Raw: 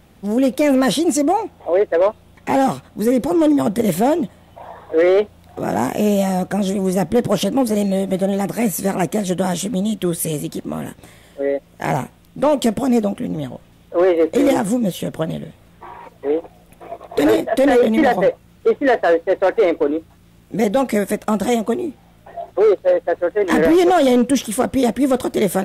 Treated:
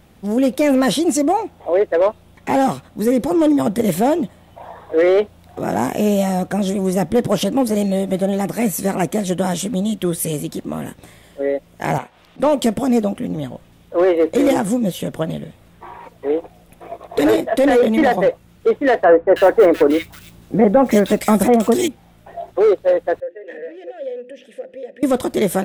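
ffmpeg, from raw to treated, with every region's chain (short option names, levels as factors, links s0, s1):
-filter_complex "[0:a]asettb=1/sr,asplit=3[s0][s1][s2];[s0]atrim=end=11.984[s3];[s1]atrim=start=11.98:end=12.4,asetpts=PTS-STARTPTS,afade=t=in:d=0.004:c=qsin,afade=t=out:st=0.416:d=0.004:c=qsin,acrossover=split=460 4900:gain=0.178 1 0.178[s4][s5][s6];[s4][s5][s6]amix=inputs=3:normalize=0,acompressor=mode=upward:threshold=0.0112:ratio=2.5:attack=3.2:release=140:knee=2.83:detection=peak[s7];[s2]atrim=start=12.396[s8];[s3][s7]acrossfade=d=0.004:c1=hsin:c2=qsin[s9];[s9][s8]acrossfade=d=0.004:c1=qsin:c2=hsin,asettb=1/sr,asplit=3[s10][s11][s12];[s10]atrim=end=19.044[s13];[s11]atrim=start=19.04:end=21.88,asetpts=PTS-STARTPTS,afade=t=in:d=0.004:c=qsin,afade=t=out:st=2.836:d=0.004:c=qsin,acontrast=30,acrusher=bits=8:mode=log:mix=0:aa=0.000001,acrossover=split=2000[s14][s15];[s15]adelay=320[s16];[s14][s16]amix=inputs=2:normalize=0,atrim=end_sample=125244[s17];[s12]atrim=start=21.876[s18];[s13][s17]acrossfade=d=0.004:c1=hsin:c2=qsin[s19];[s19][s18]acrossfade=d=0.004:c1=qsin:c2=hsin,asettb=1/sr,asplit=3[s20][s21][s22];[s20]atrim=end=23.204[s23];[s21]atrim=start=23.2:end=25.03,asetpts=PTS-STARTPTS,afade=t=in:d=0.004:c=qsin,afade=t=out:st=1.826:d=0.004:c=qsin,bandreject=f=50:t=h:w=6,bandreject=f=100:t=h:w=6,bandreject=f=150:t=h:w=6,bandreject=f=200:t=h:w=6,bandreject=f=250:t=h:w=6,bandreject=f=300:t=h:w=6,bandreject=f=350:t=h:w=6,bandreject=f=400:t=h:w=6,acompressor=threshold=0.1:ratio=6:attack=3.2:release=140:knee=1:detection=peak,asplit=3[s24][s25][s26];[s24]bandpass=f=530:t=q:w=8,volume=1[s27];[s25]bandpass=f=1840:t=q:w=8,volume=0.501[s28];[s26]bandpass=f=2480:t=q:w=8,volume=0.355[s29];[s27][s28][s29]amix=inputs=3:normalize=0[s30];[s22]atrim=start=25.026[s31];[s23][s30]acrossfade=d=0.004:c1=hsin:c2=qsin[s32];[s32][s31]acrossfade=d=0.004:c1=qsin:c2=hsin"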